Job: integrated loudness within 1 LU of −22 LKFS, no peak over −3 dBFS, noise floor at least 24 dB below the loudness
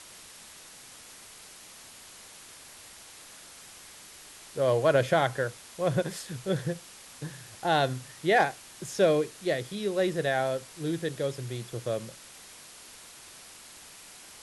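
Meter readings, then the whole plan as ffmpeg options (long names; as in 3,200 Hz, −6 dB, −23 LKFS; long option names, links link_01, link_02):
background noise floor −50 dBFS; target noise floor −53 dBFS; integrated loudness −29.0 LKFS; sample peak −11.0 dBFS; target loudness −22.0 LKFS
→ -af "afftdn=noise_reduction=6:noise_floor=-50"
-af "volume=7dB"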